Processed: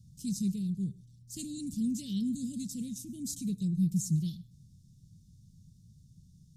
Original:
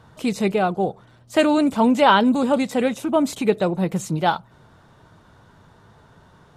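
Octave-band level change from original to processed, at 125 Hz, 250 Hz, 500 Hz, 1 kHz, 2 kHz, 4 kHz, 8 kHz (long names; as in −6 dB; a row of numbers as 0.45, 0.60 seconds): −3.5 dB, −11.5 dB, −37.5 dB, below −40 dB, below −40 dB, −18.0 dB, −3.0 dB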